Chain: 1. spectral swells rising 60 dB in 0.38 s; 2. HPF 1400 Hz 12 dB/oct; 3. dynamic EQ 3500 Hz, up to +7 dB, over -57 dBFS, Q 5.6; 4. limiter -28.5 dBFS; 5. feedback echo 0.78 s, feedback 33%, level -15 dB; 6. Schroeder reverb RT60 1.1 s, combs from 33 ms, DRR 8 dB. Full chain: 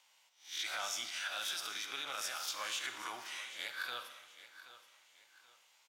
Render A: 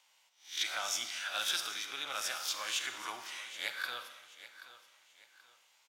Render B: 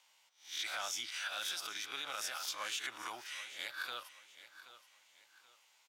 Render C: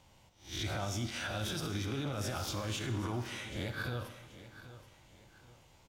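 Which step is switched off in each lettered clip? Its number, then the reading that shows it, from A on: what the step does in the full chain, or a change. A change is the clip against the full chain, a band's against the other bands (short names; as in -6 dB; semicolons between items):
4, mean gain reduction 1.5 dB; 6, echo-to-direct -7.0 dB to -14.5 dB; 2, 250 Hz band +24.0 dB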